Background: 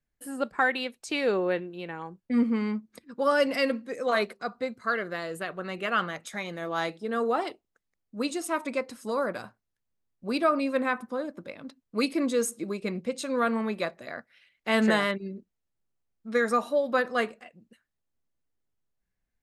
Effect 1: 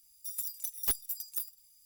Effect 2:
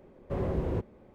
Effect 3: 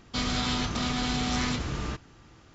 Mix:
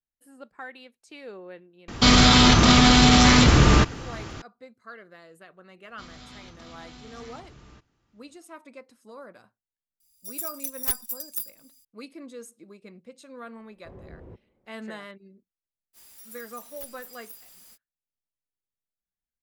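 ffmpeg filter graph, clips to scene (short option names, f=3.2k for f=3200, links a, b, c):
-filter_complex "[3:a]asplit=2[a][b];[1:a]asplit=2[c][d];[0:a]volume=-15.5dB[e];[a]alimiter=level_in=22dB:limit=-1dB:release=50:level=0:latency=1[f];[c]dynaudnorm=f=200:g=3:m=8dB[g];[2:a]highshelf=f=3k:g=-9.5[h];[d]aeval=exprs='val(0)+0.5*0.0211*sgn(val(0))':c=same[i];[f]atrim=end=2.54,asetpts=PTS-STARTPTS,volume=-5dB,afade=t=in:d=0.004:c=hsin,afade=t=out:st=2.536:d=0.004:c=hsin,adelay=1880[j];[b]atrim=end=2.54,asetpts=PTS-STARTPTS,volume=-18dB,afade=t=in:d=0.004:c=hsin,afade=t=out:st=2.536:d=0.004:c=hsin,adelay=5840[k];[g]atrim=end=1.85,asetpts=PTS-STARTPTS,volume=-4dB,afade=t=in:d=0.004:c=hsin,afade=t=out:st=1.846:d=0.004:c=hsin,adelay=10000[l];[h]atrim=end=1.14,asetpts=PTS-STARTPTS,volume=-15dB,afade=t=in:d=0.004:c=hsin,afade=t=out:st=1.136:d=0.004:c=hsin,adelay=13550[m];[i]atrim=end=1.85,asetpts=PTS-STARTPTS,volume=-13dB,afade=t=in:d=0.05,afade=t=out:st=1.8:d=0.05,adelay=15930[n];[e][j][k][l][m][n]amix=inputs=6:normalize=0"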